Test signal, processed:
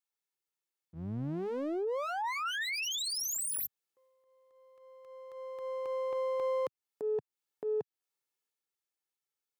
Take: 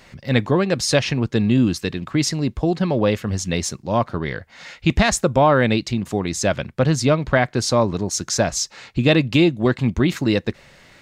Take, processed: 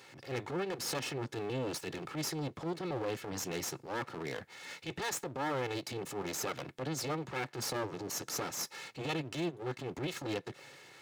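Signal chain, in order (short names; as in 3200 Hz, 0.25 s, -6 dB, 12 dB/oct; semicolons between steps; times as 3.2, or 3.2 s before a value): minimum comb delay 2.3 ms; HPF 130 Hz 24 dB/oct; compressor 4:1, threshold -28 dBFS; transient shaper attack -10 dB, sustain +3 dB; gain -4.5 dB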